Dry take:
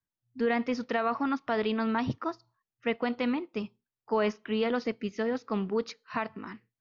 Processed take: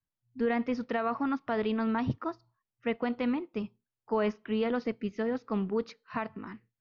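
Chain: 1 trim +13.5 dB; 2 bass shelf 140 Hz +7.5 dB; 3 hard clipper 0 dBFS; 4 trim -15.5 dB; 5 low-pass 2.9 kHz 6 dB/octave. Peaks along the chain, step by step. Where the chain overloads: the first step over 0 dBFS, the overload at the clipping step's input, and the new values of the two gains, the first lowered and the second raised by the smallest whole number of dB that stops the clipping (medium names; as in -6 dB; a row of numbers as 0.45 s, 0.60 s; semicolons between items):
-4.0 dBFS, -2.5 dBFS, -2.5 dBFS, -18.0 dBFS, -18.0 dBFS; nothing clips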